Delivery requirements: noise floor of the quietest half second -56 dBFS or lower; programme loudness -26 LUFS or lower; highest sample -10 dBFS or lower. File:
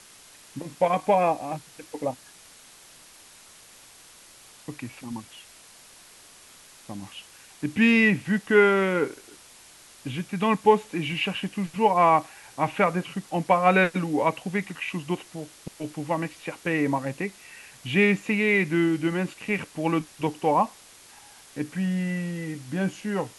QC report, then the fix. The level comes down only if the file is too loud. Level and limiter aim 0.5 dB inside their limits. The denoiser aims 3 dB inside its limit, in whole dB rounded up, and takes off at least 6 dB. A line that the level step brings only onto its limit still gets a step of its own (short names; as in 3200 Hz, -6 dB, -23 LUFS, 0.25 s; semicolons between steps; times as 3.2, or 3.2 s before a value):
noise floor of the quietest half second -51 dBFS: fail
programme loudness -24.5 LUFS: fail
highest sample -6.0 dBFS: fail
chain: denoiser 6 dB, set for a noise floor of -51 dBFS; gain -2 dB; limiter -10.5 dBFS